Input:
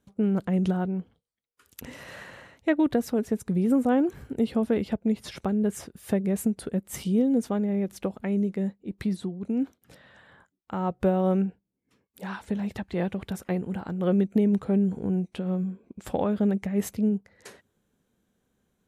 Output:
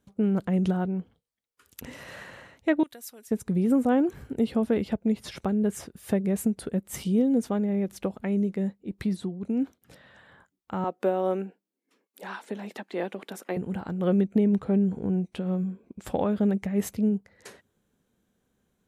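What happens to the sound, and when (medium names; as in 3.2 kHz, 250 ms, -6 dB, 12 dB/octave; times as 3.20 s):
2.83–3.31 s: pre-emphasis filter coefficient 0.97
10.84–13.57 s: high-pass 260 Hz 24 dB/octave
14.21–15.25 s: treble shelf 5.9 kHz -6.5 dB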